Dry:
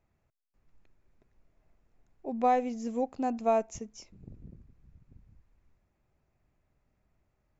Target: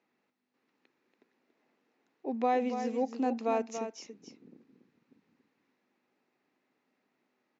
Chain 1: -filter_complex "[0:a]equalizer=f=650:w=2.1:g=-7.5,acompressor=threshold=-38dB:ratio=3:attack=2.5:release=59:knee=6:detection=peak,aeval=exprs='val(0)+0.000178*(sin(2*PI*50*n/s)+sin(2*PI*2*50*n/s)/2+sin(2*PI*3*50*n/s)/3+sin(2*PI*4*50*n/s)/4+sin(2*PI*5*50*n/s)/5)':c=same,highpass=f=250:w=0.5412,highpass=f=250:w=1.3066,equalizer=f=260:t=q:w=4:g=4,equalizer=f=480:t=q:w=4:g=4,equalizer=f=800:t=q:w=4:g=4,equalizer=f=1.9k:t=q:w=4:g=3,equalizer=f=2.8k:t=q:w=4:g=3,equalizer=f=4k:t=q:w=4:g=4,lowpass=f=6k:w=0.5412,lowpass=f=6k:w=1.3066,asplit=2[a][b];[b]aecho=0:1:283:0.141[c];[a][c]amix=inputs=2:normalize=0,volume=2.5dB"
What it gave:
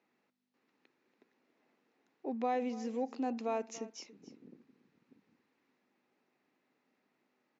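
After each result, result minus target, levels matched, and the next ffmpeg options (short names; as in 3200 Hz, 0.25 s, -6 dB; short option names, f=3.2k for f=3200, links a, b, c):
echo-to-direct -8.5 dB; compressor: peak gain reduction +5.5 dB
-filter_complex "[0:a]equalizer=f=650:w=2.1:g=-7.5,acompressor=threshold=-38dB:ratio=3:attack=2.5:release=59:knee=6:detection=peak,aeval=exprs='val(0)+0.000178*(sin(2*PI*50*n/s)+sin(2*PI*2*50*n/s)/2+sin(2*PI*3*50*n/s)/3+sin(2*PI*4*50*n/s)/4+sin(2*PI*5*50*n/s)/5)':c=same,highpass=f=250:w=0.5412,highpass=f=250:w=1.3066,equalizer=f=260:t=q:w=4:g=4,equalizer=f=480:t=q:w=4:g=4,equalizer=f=800:t=q:w=4:g=4,equalizer=f=1.9k:t=q:w=4:g=3,equalizer=f=2.8k:t=q:w=4:g=3,equalizer=f=4k:t=q:w=4:g=4,lowpass=f=6k:w=0.5412,lowpass=f=6k:w=1.3066,asplit=2[a][b];[b]aecho=0:1:283:0.376[c];[a][c]amix=inputs=2:normalize=0,volume=2.5dB"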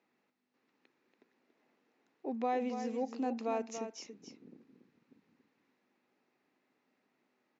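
compressor: peak gain reduction +5.5 dB
-filter_complex "[0:a]equalizer=f=650:w=2.1:g=-7.5,acompressor=threshold=-30dB:ratio=3:attack=2.5:release=59:knee=6:detection=peak,aeval=exprs='val(0)+0.000178*(sin(2*PI*50*n/s)+sin(2*PI*2*50*n/s)/2+sin(2*PI*3*50*n/s)/3+sin(2*PI*4*50*n/s)/4+sin(2*PI*5*50*n/s)/5)':c=same,highpass=f=250:w=0.5412,highpass=f=250:w=1.3066,equalizer=f=260:t=q:w=4:g=4,equalizer=f=480:t=q:w=4:g=4,equalizer=f=800:t=q:w=4:g=4,equalizer=f=1.9k:t=q:w=4:g=3,equalizer=f=2.8k:t=q:w=4:g=3,equalizer=f=4k:t=q:w=4:g=4,lowpass=f=6k:w=0.5412,lowpass=f=6k:w=1.3066,asplit=2[a][b];[b]aecho=0:1:283:0.376[c];[a][c]amix=inputs=2:normalize=0,volume=2.5dB"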